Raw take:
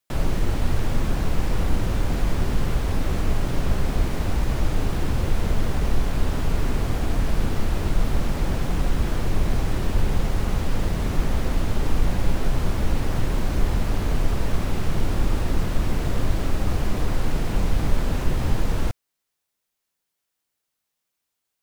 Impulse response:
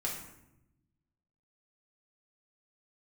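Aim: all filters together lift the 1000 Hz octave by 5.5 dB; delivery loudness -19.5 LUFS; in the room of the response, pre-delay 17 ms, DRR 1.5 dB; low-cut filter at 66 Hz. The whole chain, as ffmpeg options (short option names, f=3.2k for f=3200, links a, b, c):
-filter_complex "[0:a]highpass=66,equalizer=f=1k:t=o:g=7,asplit=2[a][b];[1:a]atrim=start_sample=2205,adelay=17[c];[b][c]afir=irnorm=-1:irlink=0,volume=-5dB[d];[a][d]amix=inputs=2:normalize=0,volume=5.5dB"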